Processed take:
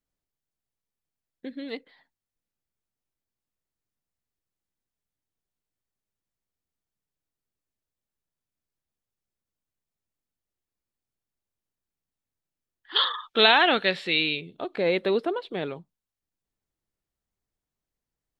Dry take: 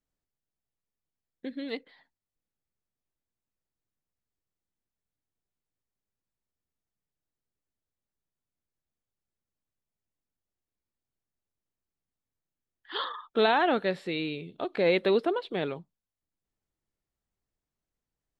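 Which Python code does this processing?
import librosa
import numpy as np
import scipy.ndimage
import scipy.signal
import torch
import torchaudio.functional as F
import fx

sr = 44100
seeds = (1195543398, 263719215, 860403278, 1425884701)

y = fx.peak_eq(x, sr, hz=3200.0, db=14.0, octaves=2.2, at=(12.95, 14.39), fade=0.02)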